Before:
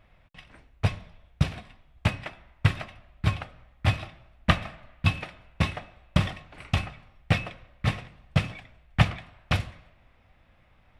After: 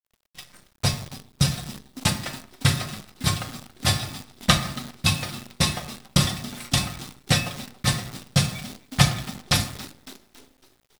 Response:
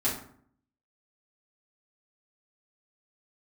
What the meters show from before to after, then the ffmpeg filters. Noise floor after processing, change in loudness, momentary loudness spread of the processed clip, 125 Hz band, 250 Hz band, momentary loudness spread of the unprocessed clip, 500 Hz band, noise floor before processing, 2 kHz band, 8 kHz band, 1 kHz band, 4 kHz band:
−65 dBFS, +4.0 dB, 14 LU, +2.0 dB, +4.5 dB, 16 LU, +3.0 dB, −61 dBFS, +3.0 dB, +21.5 dB, +3.5 dB, +11.5 dB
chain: -filter_complex "[0:a]highpass=frequency=86:poles=1,lowshelf=frequency=140:gain=3.5,aecho=1:1:5.7:0.52,asplit=6[link_01][link_02][link_03][link_04][link_05][link_06];[link_02]adelay=277,afreqshift=55,volume=-19.5dB[link_07];[link_03]adelay=554,afreqshift=110,volume=-24.1dB[link_08];[link_04]adelay=831,afreqshift=165,volume=-28.7dB[link_09];[link_05]adelay=1108,afreqshift=220,volume=-33.2dB[link_10];[link_06]adelay=1385,afreqshift=275,volume=-37.8dB[link_11];[link_01][link_07][link_08][link_09][link_10][link_11]amix=inputs=6:normalize=0,aexciter=amount=8.1:drive=3.6:freq=3800,agate=range=-33dB:threshold=-51dB:ratio=3:detection=peak,asplit=2[link_12][link_13];[1:a]atrim=start_sample=2205[link_14];[link_13][link_14]afir=irnorm=-1:irlink=0,volume=-11dB[link_15];[link_12][link_15]amix=inputs=2:normalize=0,acrusher=bits=7:dc=4:mix=0:aa=0.000001,volume=-1dB"

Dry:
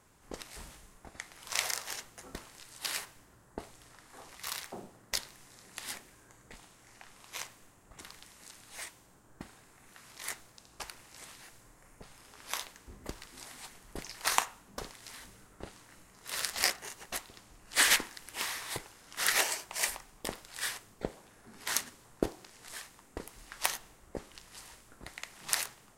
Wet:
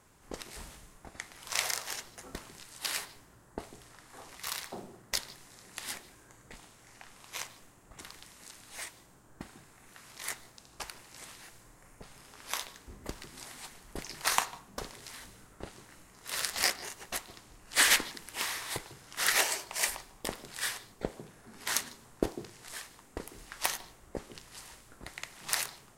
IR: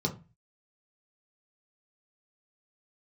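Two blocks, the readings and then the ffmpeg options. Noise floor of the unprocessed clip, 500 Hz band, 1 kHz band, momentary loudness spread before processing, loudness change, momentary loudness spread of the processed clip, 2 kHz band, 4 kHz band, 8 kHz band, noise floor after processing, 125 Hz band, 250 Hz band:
−61 dBFS, +1.5 dB, +1.0 dB, 22 LU, +1.0 dB, 22 LU, +1.0 dB, +1.0 dB, +1.0 dB, −59 dBFS, +2.0 dB, +1.5 dB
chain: -filter_complex "[0:a]asoftclip=type=tanh:threshold=-10dB,asplit=2[link_01][link_02];[1:a]atrim=start_sample=2205,asetrate=40131,aresample=44100,adelay=148[link_03];[link_02][link_03]afir=irnorm=-1:irlink=0,volume=-26dB[link_04];[link_01][link_04]amix=inputs=2:normalize=0,volume=1.5dB"

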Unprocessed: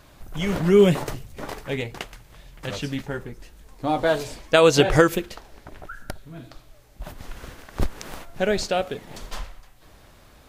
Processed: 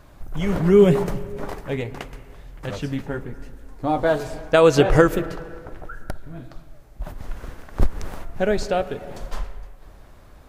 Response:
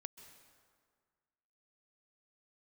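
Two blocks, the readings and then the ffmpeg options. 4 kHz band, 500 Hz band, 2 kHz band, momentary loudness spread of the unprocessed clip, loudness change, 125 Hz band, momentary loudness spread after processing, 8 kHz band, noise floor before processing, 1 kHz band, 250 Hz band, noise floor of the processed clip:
−5.0 dB, +2.0 dB, −1.0 dB, 23 LU, +1.0 dB, +2.5 dB, 23 LU, −4.5 dB, −52 dBFS, +1.0 dB, +2.0 dB, −47 dBFS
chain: -filter_complex "[0:a]asplit=2[link_01][link_02];[1:a]atrim=start_sample=2205,lowpass=2100,lowshelf=frequency=66:gain=10[link_03];[link_02][link_03]afir=irnorm=-1:irlink=0,volume=5dB[link_04];[link_01][link_04]amix=inputs=2:normalize=0,volume=-4dB"

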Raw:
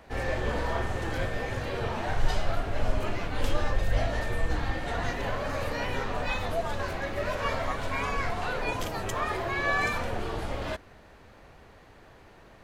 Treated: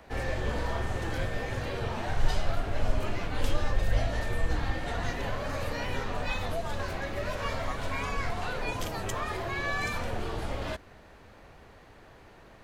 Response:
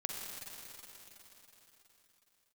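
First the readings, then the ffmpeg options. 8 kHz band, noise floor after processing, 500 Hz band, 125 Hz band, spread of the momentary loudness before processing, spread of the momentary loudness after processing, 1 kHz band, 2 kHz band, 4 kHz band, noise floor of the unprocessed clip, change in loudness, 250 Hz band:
0.0 dB, −53 dBFS, −3.0 dB, 0.0 dB, 4 LU, 3 LU, −3.0 dB, −3.0 dB, −1.0 dB, −53 dBFS, −2.0 dB, −1.5 dB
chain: -filter_complex "[0:a]acrossover=split=230|3000[link_01][link_02][link_03];[link_02]acompressor=threshold=-35dB:ratio=2[link_04];[link_01][link_04][link_03]amix=inputs=3:normalize=0"

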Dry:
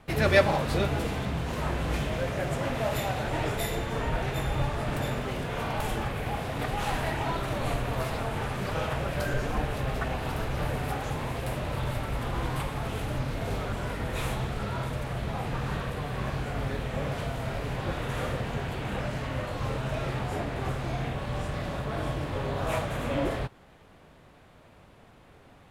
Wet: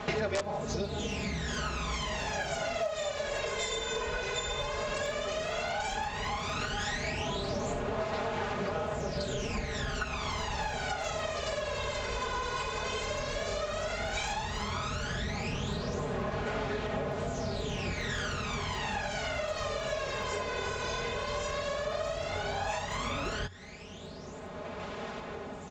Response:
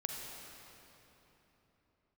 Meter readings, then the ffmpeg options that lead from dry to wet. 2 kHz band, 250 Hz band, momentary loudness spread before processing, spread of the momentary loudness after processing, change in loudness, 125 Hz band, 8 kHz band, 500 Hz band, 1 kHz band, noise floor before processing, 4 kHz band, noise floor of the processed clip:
−1.0 dB, −5.5 dB, 4 LU, 2 LU, −3.0 dB, −8.5 dB, +4.0 dB, −2.0 dB, −2.0 dB, −55 dBFS, +2.5 dB, −42 dBFS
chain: -af "highpass=46,equalizer=frequency=92:width_type=o:width=0.27:gain=14,aecho=1:1:4.8:0.84,aresample=16000,aeval=exprs='(mod(2.51*val(0)+1,2)-1)/2.51':channel_layout=same,aresample=44100,aphaser=in_gain=1:out_gain=1:delay=2:decay=0.69:speed=0.12:type=sinusoidal,bass=frequency=250:gain=-9,treble=frequency=4000:gain=9,acompressor=threshold=-37dB:ratio=8,volume=6dB"

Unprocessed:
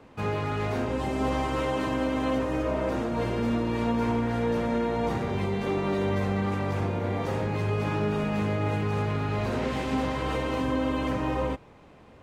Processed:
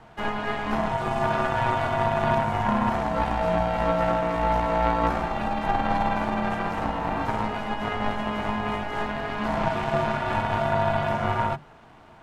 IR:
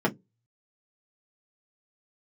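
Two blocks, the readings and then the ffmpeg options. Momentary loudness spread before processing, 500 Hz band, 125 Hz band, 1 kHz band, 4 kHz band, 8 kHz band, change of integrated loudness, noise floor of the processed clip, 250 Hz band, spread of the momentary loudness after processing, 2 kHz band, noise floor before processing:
2 LU, +1.5 dB, −1.5 dB, +8.5 dB, +2.5 dB, can't be measured, +2.5 dB, −50 dBFS, −2.0 dB, 5 LU, +5.5 dB, −52 dBFS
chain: -filter_complex "[0:a]highpass=frequency=220:width=0.5412,highpass=frequency=220:width=1.3066,acrossover=split=2700[link_01][link_02];[link_02]acompressor=threshold=-50dB:ratio=4:attack=1:release=60[link_03];[link_01][link_03]amix=inputs=2:normalize=0,aeval=exprs='val(0)*sin(2*PI*410*n/s)':channel_layout=same,aeval=exprs='0.141*(cos(1*acos(clip(val(0)/0.141,-1,1)))-cos(1*PI/2))+0.0158*(cos(3*acos(clip(val(0)/0.141,-1,1)))-cos(3*PI/2))+0.01*(cos(4*acos(clip(val(0)/0.141,-1,1)))-cos(4*PI/2))':channel_layout=same,asplit=2[link_04][link_05];[1:a]atrim=start_sample=2205[link_06];[link_05][link_06]afir=irnorm=-1:irlink=0,volume=-21.5dB[link_07];[link_04][link_07]amix=inputs=2:normalize=0,volume=8.5dB"

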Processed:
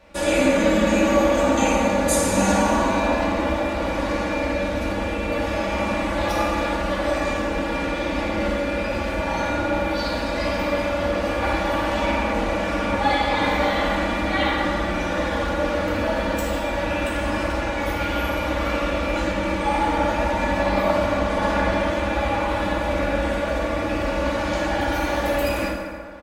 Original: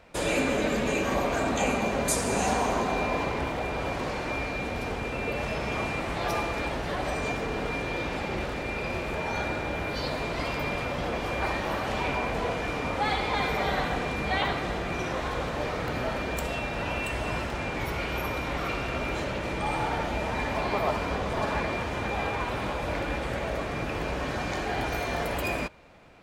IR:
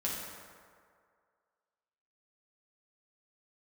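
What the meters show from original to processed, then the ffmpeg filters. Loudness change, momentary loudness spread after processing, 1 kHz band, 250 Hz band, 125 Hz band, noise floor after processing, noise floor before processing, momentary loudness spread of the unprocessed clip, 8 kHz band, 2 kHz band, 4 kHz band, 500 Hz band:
+7.0 dB, 6 LU, +6.5 dB, +9.5 dB, +4.5 dB, −26 dBFS, −33 dBFS, 5 LU, +5.5 dB, +5.5 dB, +5.5 dB, +8.5 dB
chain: -filter_complex "[0:a]aecho=1:1:3.5:0.81[link_01];[1:a]atrim=start_sample=2205[link_02];[link_01][link_02]afir=irnorm=-1:irlink=0"

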